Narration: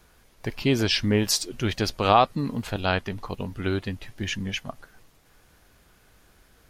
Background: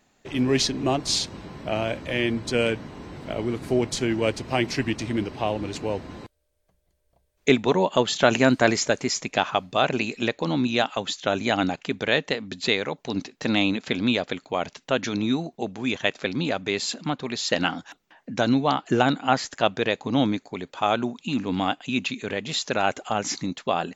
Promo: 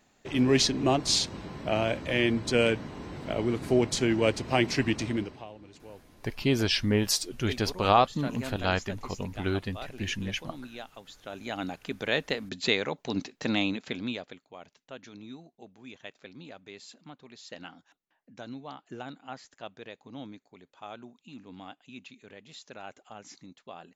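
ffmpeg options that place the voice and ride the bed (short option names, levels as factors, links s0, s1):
-filter_complex "[0:a]adelay=5800,volume=0.708[s0];[1:a]volume=6.31,afade=t=out:st=5.01:d=0.45:silence=0.112202,afade=t=in:st=11.21:d=1.34:silence=0.141254,afade=t=out:st=13.26:d=1.17:silence=0.133352[s1];[s0][s1]amix=inputs=2:normalize=0"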